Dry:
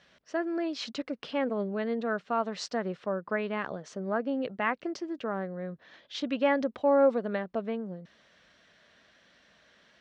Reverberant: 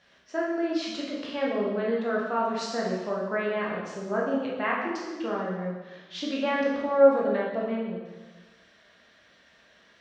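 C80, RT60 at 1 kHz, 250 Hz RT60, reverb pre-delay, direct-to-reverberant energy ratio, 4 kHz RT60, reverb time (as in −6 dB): 3.5 dB, 1.2 s, 1.3 s, 7 ms, −4.5 dB, 1.2 s, 1.2 s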